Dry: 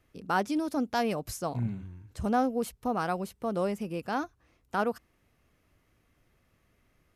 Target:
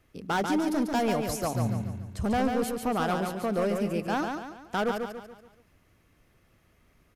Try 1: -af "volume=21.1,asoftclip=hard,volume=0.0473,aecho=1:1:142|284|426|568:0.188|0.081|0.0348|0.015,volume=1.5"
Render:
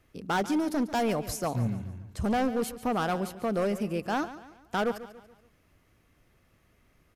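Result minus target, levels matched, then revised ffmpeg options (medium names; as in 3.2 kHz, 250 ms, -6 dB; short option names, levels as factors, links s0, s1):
echo-to-direct -9.5 dB
-af "volume=21.1,asoftclip=hard,volume=0.0473,aecho=1:1:142|284|426|568|710:0.562|0.242|0.104|0.0447|0.0192,volume=1.5"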